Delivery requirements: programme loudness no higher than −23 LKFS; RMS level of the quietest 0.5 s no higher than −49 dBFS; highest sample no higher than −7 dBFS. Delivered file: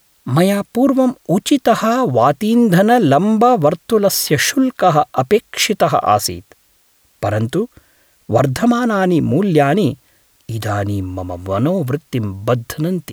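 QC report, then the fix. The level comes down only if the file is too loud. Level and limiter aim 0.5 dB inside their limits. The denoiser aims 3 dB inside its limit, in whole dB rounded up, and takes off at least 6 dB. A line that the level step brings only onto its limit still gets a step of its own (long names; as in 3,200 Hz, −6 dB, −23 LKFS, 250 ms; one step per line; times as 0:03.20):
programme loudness −15.5 LKFS: out of spec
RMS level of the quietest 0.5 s −56 dBFS: in spec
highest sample −2.0 dBFS: out of spec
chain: level −8 dB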